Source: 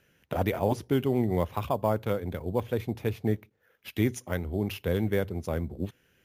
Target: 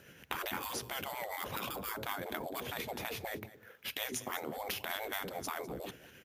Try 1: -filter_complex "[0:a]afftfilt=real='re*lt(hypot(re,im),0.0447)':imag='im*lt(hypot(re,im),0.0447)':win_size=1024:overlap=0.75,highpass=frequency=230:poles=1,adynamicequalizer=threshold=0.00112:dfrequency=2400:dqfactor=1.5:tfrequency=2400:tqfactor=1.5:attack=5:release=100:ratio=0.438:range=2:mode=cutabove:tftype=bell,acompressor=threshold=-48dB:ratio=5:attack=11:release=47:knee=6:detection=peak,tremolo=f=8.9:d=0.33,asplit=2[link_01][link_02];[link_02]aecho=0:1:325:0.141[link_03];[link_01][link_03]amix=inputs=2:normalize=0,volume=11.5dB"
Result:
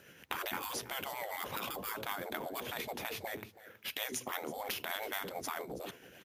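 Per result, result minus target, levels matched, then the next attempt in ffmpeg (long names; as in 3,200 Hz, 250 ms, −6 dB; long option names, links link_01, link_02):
echo 124 ms late; 125 Hz band −3.5 dB
-filter_complex "[0:a]afftfilt=real='re*lt(hypot(re,im),0.0447)':imag='im*lt(hypot(re,im),0.0447)':win_size=1024:overlap=0.75,highpass=frequency=230:poles=1,adynamicequalizer=threshold=0.00112:dfrequency=2400:dqfactor=1.5:tfrequency=2400:tqfactor=1.5:attack=5:release=100:ratio=0.438:range=2:mode=cutabove:tftype=bell,acompressor=threshold=-48dB:ratio=5:attack=11:release=47:knee=6:detection=peak,tremolo=f=8.9:d=0.33,asplit=2[link_01][link_02];[link_02]aecho=0:1:201:0.141[link_03];[link_01][link_03]amix=inputs=2:normalize=0,volume=11.5dB"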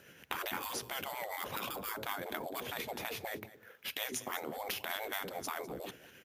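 125 Hz band −3.5 dB
-filter_complex "[0:a]afftfilt=real='re*lt(hypot(re,im),0.0447)':imag='im*lt(hypot(re,im),0.0447)':win_size=1024:overlap=0.75,highpass=frequency=100:poles=1,adynamicequalizer=threshold=0.00112:dfrequency=2400:dqfactor=1.5:tfrequency=2400:tqfactor=1.5:attack=5:release=100:ratio=0.438:range=2:mode=cutabove:tftype=bell,acompressor=threshold=-48dB:ratio=5:attack=11:release=47:knee=6:detection=peak,tremolo=f=8.9:d=0.33,asplit=2[link_01][link_02];[link_02]aecho=0:1:201:0.141[link_03];[link_01][link_03]amix=inputs=2:normalize=0,volume=11.5dB"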